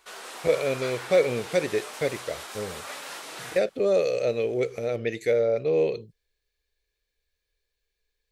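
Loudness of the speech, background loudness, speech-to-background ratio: -26.0 LUFS, -38.0 LUFS, 12.0 dB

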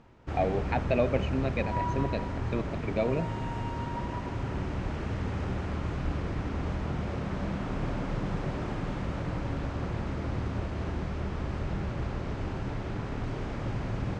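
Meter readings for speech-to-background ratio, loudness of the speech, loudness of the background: 2.0 dB, -32.0 LUFS, -34.0 LUFS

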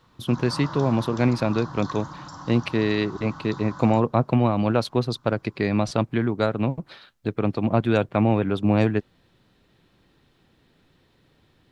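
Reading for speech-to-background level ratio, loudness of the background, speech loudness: 15.0 dB, -38.5 LUFS, -23.5 LUFS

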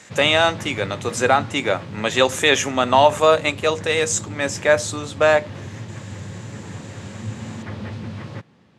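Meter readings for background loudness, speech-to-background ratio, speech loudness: -34.0 LUFS, 15.0 dB, -19.0 LUFS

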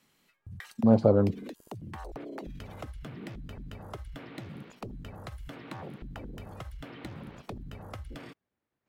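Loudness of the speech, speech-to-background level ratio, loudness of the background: -24.0 LUFS, 20.0 dB, -44.0 LUFS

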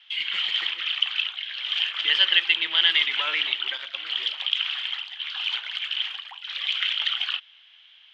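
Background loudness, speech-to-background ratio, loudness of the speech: -26.0 LUFS, 3.0 dB, -23.0 LUFS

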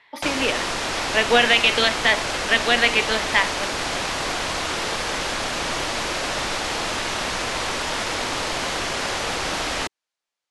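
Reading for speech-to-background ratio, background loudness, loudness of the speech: 5.0 dB, -24.5 LUFS, -19.5 LUFS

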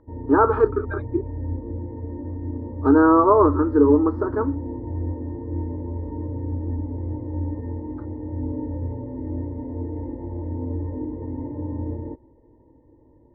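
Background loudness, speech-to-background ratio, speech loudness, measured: -30.5 LUFS, 11.5 dB, -19.0 LUFS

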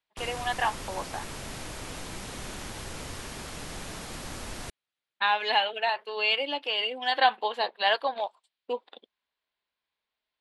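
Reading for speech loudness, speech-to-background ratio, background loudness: -27.5 LUFS, 11.5 dB, -39.0 LUFS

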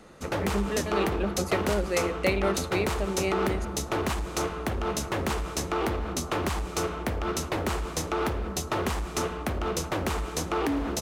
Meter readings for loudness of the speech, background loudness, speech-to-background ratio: -30.5 LUFS, -30.0 LUFS, -0.5 dB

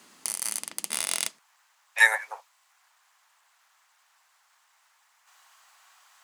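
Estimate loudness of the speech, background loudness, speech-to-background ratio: -22.5 LUFS, -29.5 LUFS, 7.0 dB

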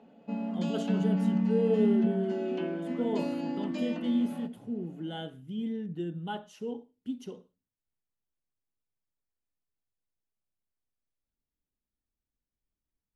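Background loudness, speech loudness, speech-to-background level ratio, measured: -31.0 LUFS, -34.5 LUFS, -3.5 dB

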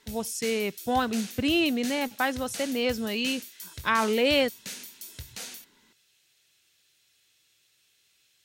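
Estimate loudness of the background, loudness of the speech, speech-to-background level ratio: -40.0 LUFS, -27.0 LUFS, 13.0 dB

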